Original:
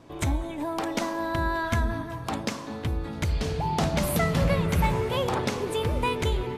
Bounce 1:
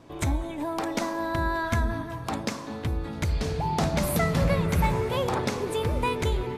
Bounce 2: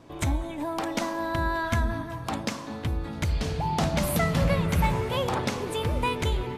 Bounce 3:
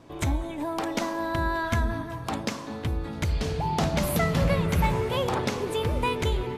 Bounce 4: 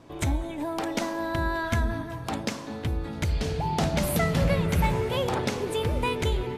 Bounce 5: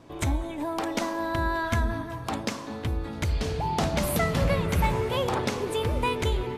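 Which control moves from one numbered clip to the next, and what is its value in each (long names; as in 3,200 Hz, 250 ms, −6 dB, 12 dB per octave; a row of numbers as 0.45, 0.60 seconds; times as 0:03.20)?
dynamic equaliser, frequency: 3,000, 410, 8,900, 1,100, 160 Hertz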